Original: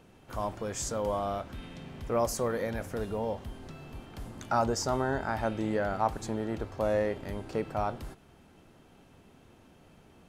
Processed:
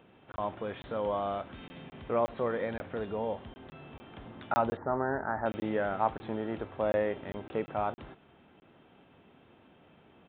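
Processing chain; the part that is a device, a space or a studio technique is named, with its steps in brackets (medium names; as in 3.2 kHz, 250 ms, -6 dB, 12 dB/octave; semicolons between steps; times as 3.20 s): call with lost packets (high-pass 180 Hz 6 dB/octave; resampled via 8 kHz; lost packets of 20 ms random); 4.77–5.46 s: elliptic low-pass 1.8 kHz, stop band 40 dB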